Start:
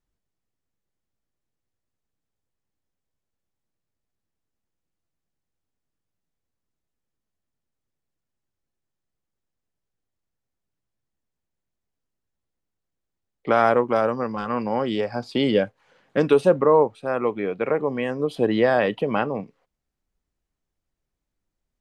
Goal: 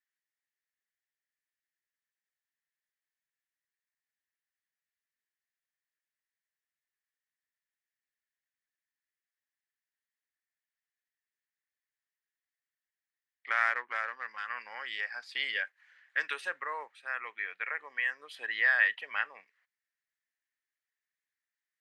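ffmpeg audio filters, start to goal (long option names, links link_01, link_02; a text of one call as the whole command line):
ffmpeg -i in.wav -filter_complex "[0:a]asettb=1/sr,asplit=3[link_01][link_02][link_03];[link_01]atrim=end=13.514[link_04];[link_02]atrim=start=13.51:end=14.28,asetpts=PTS-STARTPTS,afade=type=in:duration=0.004:curve=qsin,afade=type=out:start_time=0.766:duration=0.004:curve=qsin,adynamicsmooth=sensitivity=2:basefreq=3300[link_05];[link_03]atrim=start=14.276[link_06];[link_04][link_05]acrossfade=duration=0.004:curve1=hsin:curve2=qsin[link_07];[link_07][link_06]acrossfade=duration=0.004:curve1=qsin:curve2=hsin,highpass=frequency=1800:width_type=q:width=6,volume=-8.5dB" out.wav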